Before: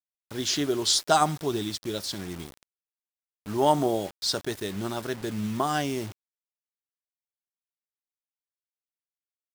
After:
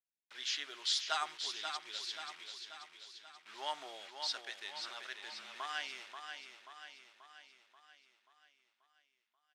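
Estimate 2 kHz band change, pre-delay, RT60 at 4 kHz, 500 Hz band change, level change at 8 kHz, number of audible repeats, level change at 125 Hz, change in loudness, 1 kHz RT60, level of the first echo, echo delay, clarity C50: −5.5 dB, no reverb audible, no reverb audible, −24.5 dB, −14.5 dB, 6, below −40 dB, −13.0 dB, no reverb audible, −7.0 dB, 534 ms, no reverb audible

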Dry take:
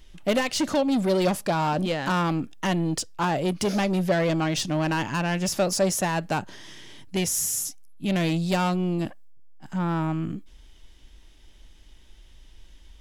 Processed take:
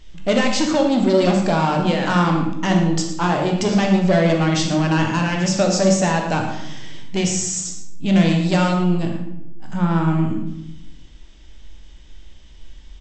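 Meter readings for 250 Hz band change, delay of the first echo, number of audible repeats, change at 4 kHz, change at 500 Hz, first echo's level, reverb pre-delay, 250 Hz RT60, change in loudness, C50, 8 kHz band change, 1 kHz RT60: +8.0 dB, 113 ms, 1, +5.5 dB, +6.0 dB, −11.0 dB, 16 ms, 1.3 s, +6.5 dB, 4.0 dB, +3.5 dB, 0.75 s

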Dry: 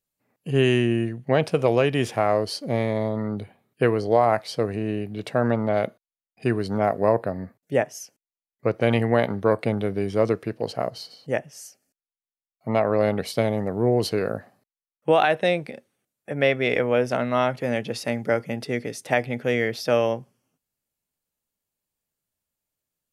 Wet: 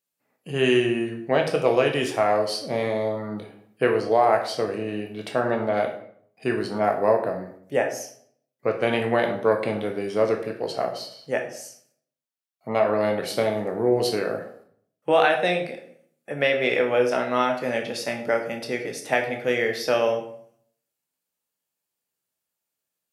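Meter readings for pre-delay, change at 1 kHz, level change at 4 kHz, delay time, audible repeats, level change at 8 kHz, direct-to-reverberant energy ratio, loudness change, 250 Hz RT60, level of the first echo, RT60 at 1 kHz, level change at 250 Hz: 12 ms, +1.0 dB, +2.0 dB, no echo audible, no echo audible, +1.5 dB, 2.5 dB, 0.0 dB, 0.65 s, no echo audible, 0.60 s, −2.5 dB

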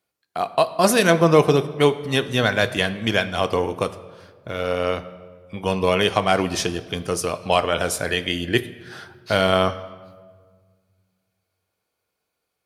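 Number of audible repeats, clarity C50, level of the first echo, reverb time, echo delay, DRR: no echo audible, 15.0 dB, no echo audible, 1.7 s, no echo audible, 10.0 dB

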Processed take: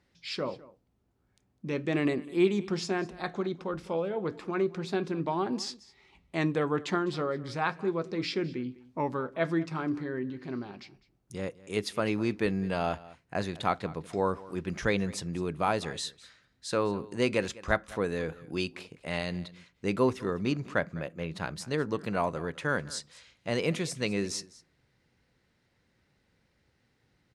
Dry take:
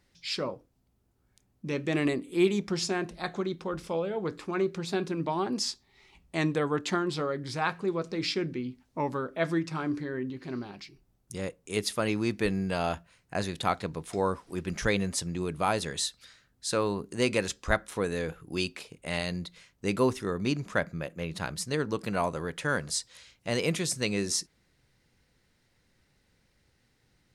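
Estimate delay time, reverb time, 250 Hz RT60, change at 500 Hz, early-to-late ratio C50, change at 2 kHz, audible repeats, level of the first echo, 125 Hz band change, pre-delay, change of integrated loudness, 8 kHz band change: 204 ms, no reverb audible, no reverb audible, 0.0 dB, no reverb audible, −1.0 dB, 1, −20.0 dB, −1.0 dB, no reverb audible, −1.0 dB, −7.5 dB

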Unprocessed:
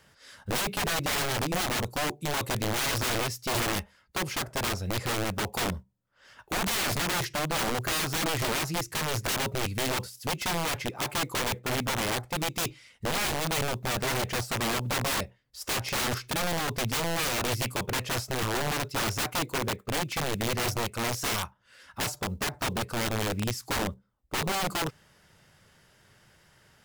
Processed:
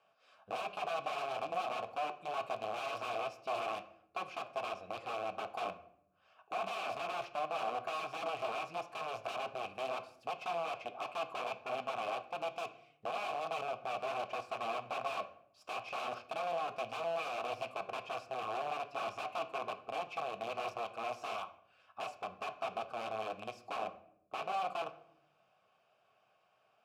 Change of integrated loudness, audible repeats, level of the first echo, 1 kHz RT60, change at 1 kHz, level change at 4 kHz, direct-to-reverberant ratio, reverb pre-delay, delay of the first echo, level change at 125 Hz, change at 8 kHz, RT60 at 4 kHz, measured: −10.5 dB, no echo audible, no echo audible, 0.60 s, −4.5 dB, −16.5 dB, 8.0 dB, 5 ms, no echo audible, −26.5 dB, −26.5 dB, 0.45 s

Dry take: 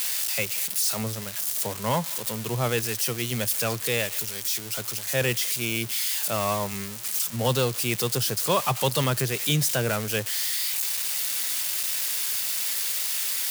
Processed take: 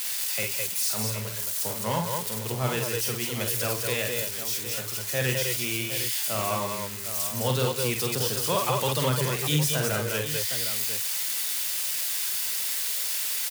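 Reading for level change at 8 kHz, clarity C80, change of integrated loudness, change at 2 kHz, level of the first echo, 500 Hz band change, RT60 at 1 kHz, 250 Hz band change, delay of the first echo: −1.0 dB, no reverb audible, −1.0 dB, −1.0 dB, −5.0 dB, −1.0 dB, no reverb audible, −1.5 dB, 47 ms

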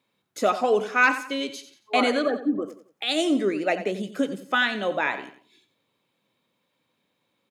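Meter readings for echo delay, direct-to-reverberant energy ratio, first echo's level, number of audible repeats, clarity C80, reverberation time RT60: 90 ms, no reverb audible, −12.5 dB, 3, no reverb audible, no reverb audible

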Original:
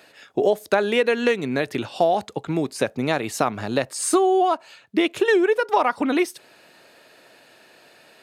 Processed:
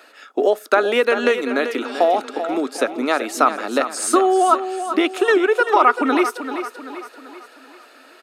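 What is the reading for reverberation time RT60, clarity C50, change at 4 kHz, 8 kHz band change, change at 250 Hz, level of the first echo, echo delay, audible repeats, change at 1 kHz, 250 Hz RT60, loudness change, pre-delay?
no reverb audible, no reverb audible, +2.5 dB, +2.0 dB, +2.0 dB, −10.0 dB, 388 ms, 4, +5.5 dB, no reverb audible, +3.5 dB, no reverb audible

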